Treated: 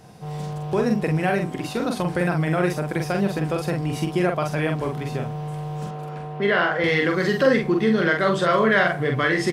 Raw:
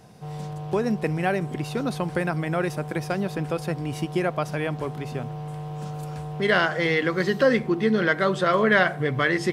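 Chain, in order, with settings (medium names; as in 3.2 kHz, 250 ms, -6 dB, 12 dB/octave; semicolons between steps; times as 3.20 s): in parallel at +1.5 dB: peak limiter -15.5 dBFS, peak gain reduction 9.5 dB; 1.37–2.00 s: on the sum: hum notches 50/100/150/200/250/300/350/400/450 Hz; 5.86–6.84 s: three-band isolator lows -12 dB, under 160 Hz, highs -14 dB, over 3.4 kHz; doubling 45 ms -4 dB; trim -4.5 dB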